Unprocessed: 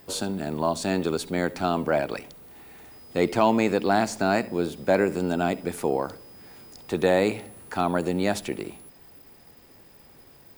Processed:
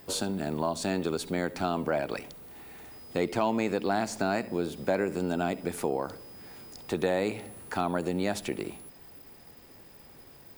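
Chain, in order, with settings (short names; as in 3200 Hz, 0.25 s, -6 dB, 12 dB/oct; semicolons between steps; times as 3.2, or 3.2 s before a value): compressor 2:1, threshold -28 dBFS, peak gain reduction 7.5 dB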